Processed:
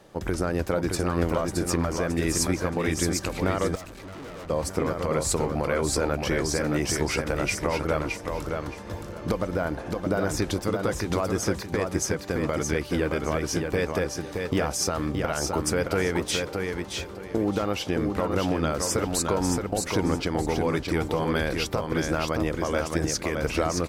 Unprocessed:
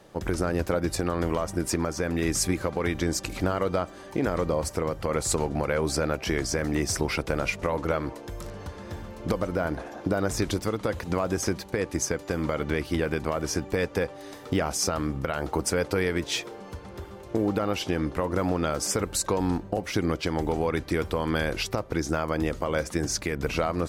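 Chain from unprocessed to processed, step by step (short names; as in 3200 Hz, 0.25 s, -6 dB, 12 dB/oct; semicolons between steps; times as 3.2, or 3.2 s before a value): feedback echo 0.62 s, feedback 25%, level -4.5 dB; 3.75–4.5 tube stage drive 38 dB, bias 0.7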